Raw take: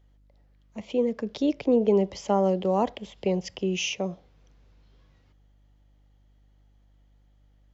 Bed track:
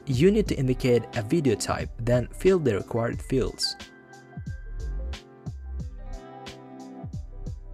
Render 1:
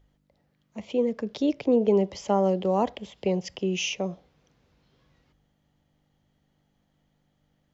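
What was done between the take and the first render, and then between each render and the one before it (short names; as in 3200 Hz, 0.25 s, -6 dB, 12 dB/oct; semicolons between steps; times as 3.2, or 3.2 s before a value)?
de-hum 50 Hz, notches 2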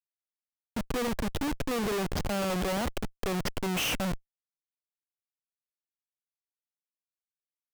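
Schmitt trigger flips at -34.5 dBFS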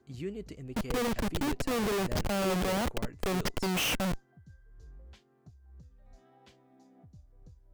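add bed track -18.5 dB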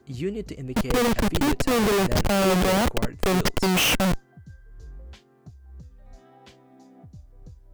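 gain +9 dB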